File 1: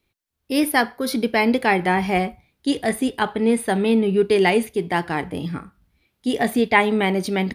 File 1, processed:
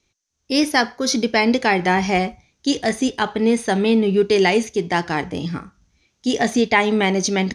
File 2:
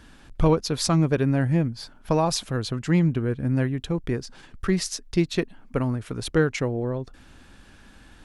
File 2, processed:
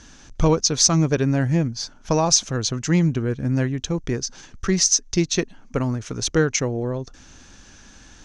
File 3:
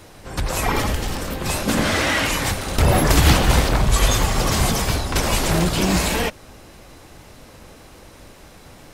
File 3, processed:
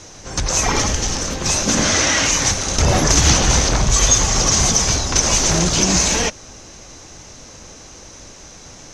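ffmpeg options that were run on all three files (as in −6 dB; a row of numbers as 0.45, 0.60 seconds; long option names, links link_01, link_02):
-filter_complex "[0:a]lowpass=frequency=6200:width_type=q:width=8.1,asplit=2[link_01][link_02];[link_02]alimiter=limit=-9.5dB:level=0:latency=1:release=122,volume=0.5dB[link_03];[link_01][link_03]amix=inputs=2:normalize=0,volume=-4.5dB"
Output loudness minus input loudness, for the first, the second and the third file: +1.5, +3.5, +4.0 LU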